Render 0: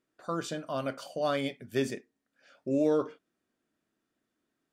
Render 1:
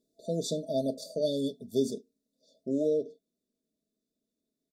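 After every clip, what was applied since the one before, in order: FFT band-reject 670–3400 Hz; comb 4.5 ms, depth 51%; vocal rider within 4 dB 0.5 s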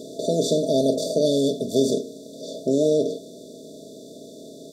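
per-bin compression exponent 0.4; gain +5 dB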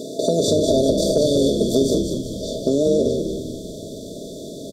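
compressor, threshold -21 dBFS, peak gain reduction 7 dB; frequency-shifting echo 0.195 s, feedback 48%, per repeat -72 Hz, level -5.5 dB; gain +6.5 dB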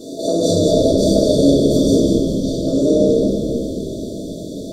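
reverb RT60 2.6 s, pre-delay 3 ms, DRR -10.5 dB; gain -7.5 dB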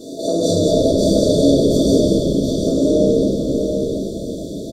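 echo 0.728 s -6.5 dB; gain -1 dB

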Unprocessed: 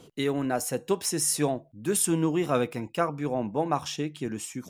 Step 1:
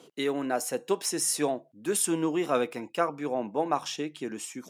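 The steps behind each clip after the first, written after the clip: HPF 270 Hz 12 dB/oct; high shelf 12000 Hz -5.5 dB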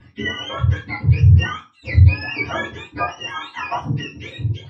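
spectrum mirrored in octaves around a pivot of 910 Hz; reverb RT60 0.30 s, pre-delay 3 ms, DRR -5 dB; gain -2 dB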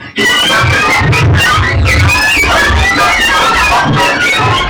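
echoes that change speed 0.208 s, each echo -4 st, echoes 3, each echo -6 dB; overdrive pedal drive 38 dB, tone 5200 Hz, clips at 0 dBFS; gain -1 dB

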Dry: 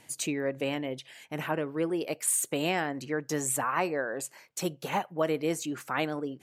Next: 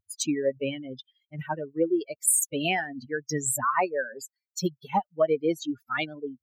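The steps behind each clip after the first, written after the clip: per-bin expansion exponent 3; gain +9 dB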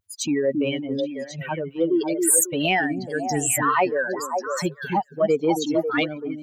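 transient shaper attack -6 dB, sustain +3 dB; delay with a stepping band-pass 0.273 s, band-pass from 250 Hz, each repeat 1.4 oct, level -0.5 dB; gain +6 dB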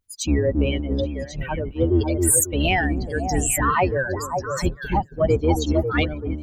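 octaver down 2 oct, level +4 dB

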